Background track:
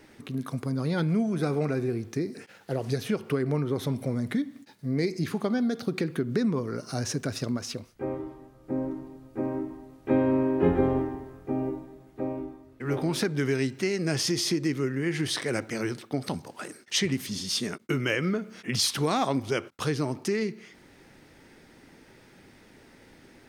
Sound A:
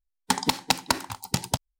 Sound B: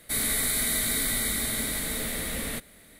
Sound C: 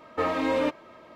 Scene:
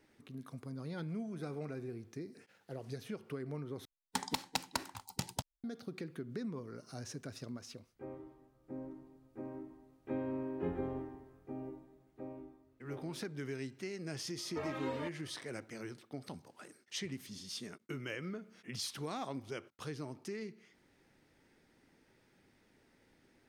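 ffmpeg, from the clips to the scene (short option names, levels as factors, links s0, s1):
-filter_complex "[0:a]volume=0.178[s0];[1:a]dynaudnorm=f=160:g=3:m=3.76[s1];[3:a]asplit=2[s2][s3];[s3]adelay=3.4,afreqshift=-2.4[s4];[s2][s4]amix=inputs=2:normalize=1[s5];[s0]asplit=2[s6][s7];[s6]atrim=end=3.854[s8];[s1]atrim=end=1.79,asetpts=PTS-STARTPTS,volume=0.158[s9];[s7]atrim=start=5.636[s10];[s5]atrim=end=1.15,asetpts=PTS-STARTPTS,volume=0.266,afade=t=in:d=0.004:c=hsin,afade=t=out:st=1.146:d=0.004:c=hsin,adelay=14380[s11];[s8][s9]acrossfade=d=0.004:c1=hsin:c2=hsin[s12];[s12][s10]acrossfade=d=0.004:c1=hsin:c2=hsin[s13];[s13][s11]amix=inputs=2:normalize=0"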